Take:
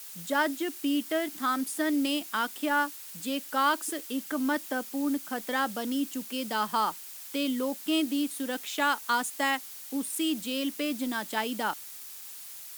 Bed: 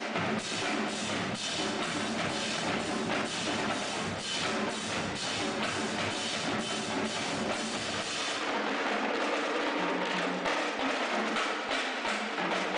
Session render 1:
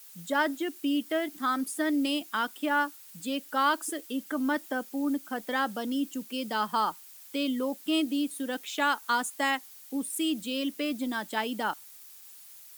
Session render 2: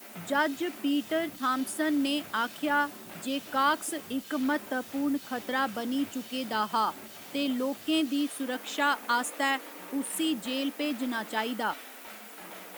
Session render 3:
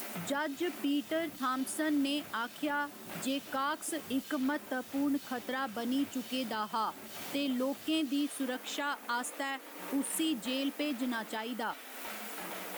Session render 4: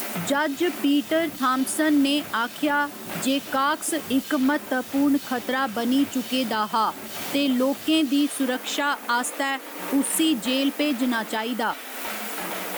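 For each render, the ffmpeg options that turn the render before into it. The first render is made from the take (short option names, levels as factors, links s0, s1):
-af "afftdn=nr=8:nf=-44"
-filter_complex "[1:a]volume=0.178[s0];[0:a][s0]amix=inputs=2:normalize=0"
-af "acompressor=mode=upward:threshold=0.0178:ratio=2.5,alimiter=limit=0.0631:level=0:latency=1:release=365"
-af "volume=3.55"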